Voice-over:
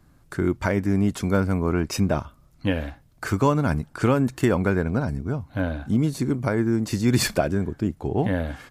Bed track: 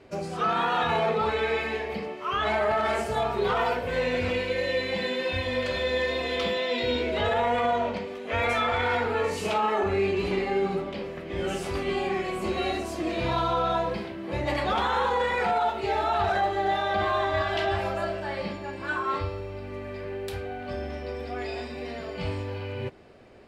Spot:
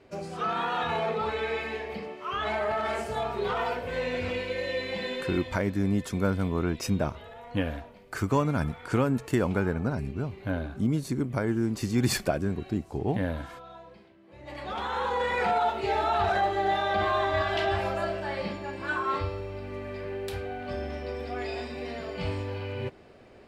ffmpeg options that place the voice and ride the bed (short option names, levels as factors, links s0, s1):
-filter_complex "[0:a]adelay=4900,volume=0.562[s0];[1:a]volume=6.68,afade=t=out:st=5.14:d=0.5:silence=0.141254,afade=t=in:st=14.37:d=1.09:silence=0.0944061[s1];[s0][s1]amix=inputs=2:normalize=0"